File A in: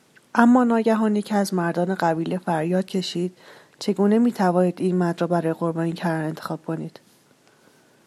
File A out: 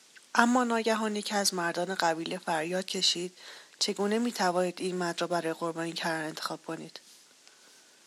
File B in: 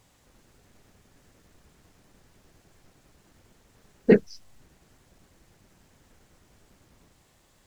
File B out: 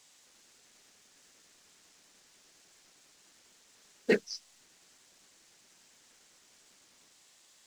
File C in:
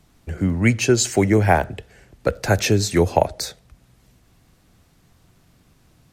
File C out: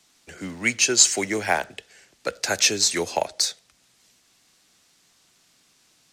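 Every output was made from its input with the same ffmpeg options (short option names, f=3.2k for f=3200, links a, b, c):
-filter_complex "[0:a]crystalizer=i=10:c=0,acrusher=bits=5:mode=log:mix=0:aa=0.000001,acrossover=split=190 7800:gain=0.158 1 0.1[a][b][c];[a][b][c]amix=inputs=3:normalize=0,volume=-10dB"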